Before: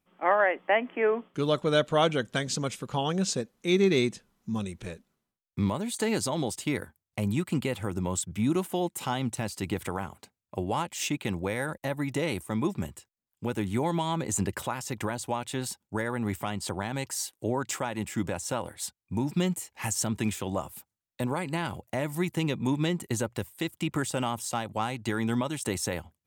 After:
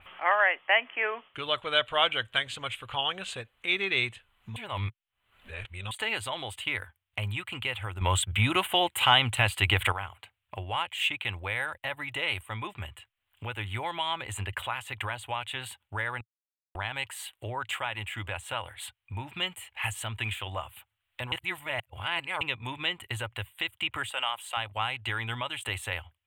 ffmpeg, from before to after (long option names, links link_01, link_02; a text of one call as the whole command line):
ffmpeg -i in.wav -filter_complex "[0:a]asettb=1/sr,asplit=3[link_01][link_02][link_03];[link_01]atrim=end=24.094[link_04];[link_02]atrim=start=24.09:end=24.57,asetpts=PTS-STARTPTS,afade=type=in:duration=0.004:curve=qsin,afade=type=out:start_time=0.476:duration=0.004:curve=qsin,highpass=500[link_05];[link_03]atrim=start=24.566[link_06];[link_04][link_05]acrossfade=duration=0.004:curve1=hsin:curve2=qsin[link_07];[link_07][link_06]acrossfade=duration=0.004:curve1=qsin:curve2=hsin,asplit=9[link_08][link_09][link_10][link_11][link_12][link_13][link_14][link_15][link_16];[link_08]atrim=end=4.562[link_17];[link_09]atrim=start=4.558:end=5.912,asetpts=PTS-STARTPTS,areverse[link_18];[link_10]atrim=start=5.908:end=8.012[link_19];[link_11]atrim=start=8.008:end=9.922,asetpts=PTS-STARTPTS,volume=10dB[link_20];[link_12]atrim=start=9.918:end=16.21,asetpts=PTS-STARTPTS,afade=type=out:start_time=6.288:duration=0.004:curve=hsin[link_21];[link_13]atrim=start=16.21:end=16.75,asetpts=PTS-STARTPTS,volume=0[link_22];[link_14]atrim=start=16.75:end=21.322,asetpts=PTS-STARTPTS,afade=type=in:duration=0.004:curve=hsin[link_23];[link_15]atrim=start=21.318:end=22.412,asetpts=PTS-STARTPTS,areverse[link_24];[link_16]atrim=start=22.408[link_25];[link_17][link_18]acrossfade=duration=0.004:curve1=hsin:curve2=hsin[link_26];[link_26][link_19]acrossfade=duration=0.004:curve1=hsin:curve2=hsin[link_27];[link_27][link_20]acrossfade=duration=0.004:curve1=hsin:curve2=hsin[link_28];[link_21][link_22][link_23]concat=n=3:v=0:a=1[link_29];[link_28][link_29]acrossfade=duration=0.004:curve1=hsin:curve2=hsin[link_30];[link_30][link_24]acrossfade=duration=0.004:curve1=hsin:curve2=hsin[link_31];[link_31][link_25]acrossfade=duration=0.004:curve1=hsin:curve2=hsin,firequalizer=gain_entry='entry(110,0);entry(150,-21);entry(650,-4);entry(1100,1);entry(3000,9);entry(5400,-28);entry(8200,-12)':delay=0.05:min_phase=1,acompressor=mode=upward:threshold=-35dB:ratio=2.5,adynamicequalizer=threshold=0.00891:dfrequency=3600:dqfactor=0.7:tfrequency=3600:tqfactor=0.7:attack=5:release=100:ratio=0.375:range=2.5:mode=boostabove:tftype=highshelf" out.wav